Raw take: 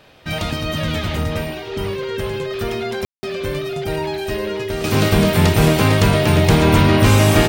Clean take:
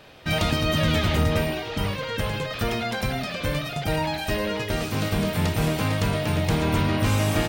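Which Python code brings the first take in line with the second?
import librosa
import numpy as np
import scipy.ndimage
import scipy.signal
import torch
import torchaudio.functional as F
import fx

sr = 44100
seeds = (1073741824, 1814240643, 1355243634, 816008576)

y = fx.notch(x, sr, hz=390.0, q=30.0)
y = fx.fix_ambience(y, sr, seeds[0], print_start_s=0.0, print_end_s=0.5, start_s=3.05, end_s=3.23)
y = fx.gain(y, sr, db=fx.steps((0.0, 0.0), (4.84, -9.5)))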